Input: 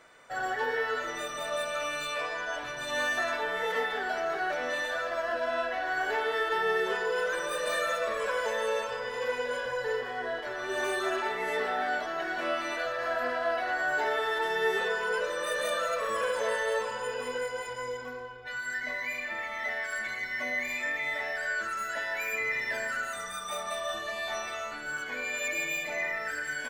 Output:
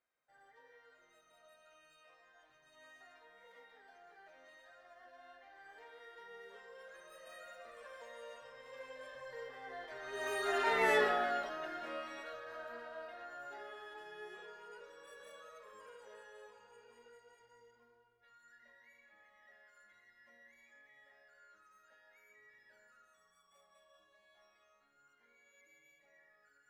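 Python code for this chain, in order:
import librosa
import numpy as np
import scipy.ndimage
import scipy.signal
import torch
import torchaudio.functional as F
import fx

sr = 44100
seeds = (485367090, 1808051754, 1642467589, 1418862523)

y = fx.doppler_pass(x, sr, speed_mps=18, closest_m=3.3, pass_at_s=10.87)
y = y * librosa.db_to_amplitude(2.5)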